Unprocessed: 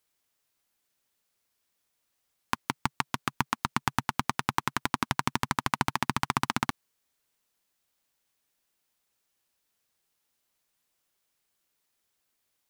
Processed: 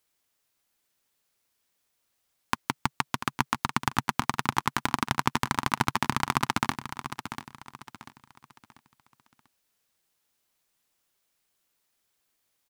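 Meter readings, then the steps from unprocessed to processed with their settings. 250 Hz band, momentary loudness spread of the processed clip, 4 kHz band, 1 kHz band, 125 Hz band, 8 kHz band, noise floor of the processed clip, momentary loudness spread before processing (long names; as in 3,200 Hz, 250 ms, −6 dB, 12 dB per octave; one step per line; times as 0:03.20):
+2.0 dB, 14 LU, +2.0 dB, +2.0 dB, +2.0 dB, +2.0 dB, −77 dBFS, 5 LU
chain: repeating echo 691 ms, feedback 34%, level −10.5 dB
level +1.5 dB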